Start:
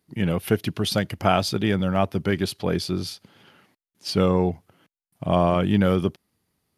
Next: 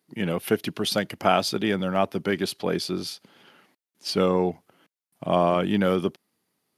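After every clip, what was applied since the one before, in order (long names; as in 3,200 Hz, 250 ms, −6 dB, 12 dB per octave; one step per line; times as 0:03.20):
high-pass filter 210 Hz 12 dB per octave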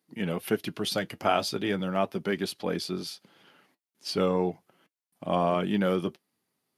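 flanger 0.38 Hz, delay 3.6 ms, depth 4.5 ms, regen −59%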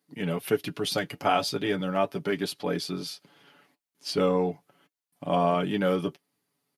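comb filter 7 ms, depth 56%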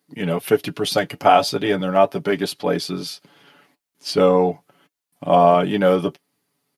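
dynamic equaliser 690 Hz, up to +6 dB, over −36 dBFS, Q 1.2
level +6 dB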